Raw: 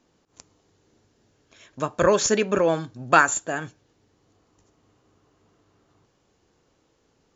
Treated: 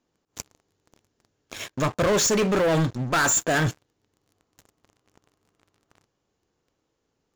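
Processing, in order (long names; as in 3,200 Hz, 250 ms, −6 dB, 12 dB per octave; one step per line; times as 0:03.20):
dynamic equaliser 110 Hz, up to +4 dB, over −40 dBFS, Q 0.9
reversed playback
downward compressor 4 to 1, threshold −31 dBFS, peak gain reduction 17 dB
reversed playback
leveller curve on the samples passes 5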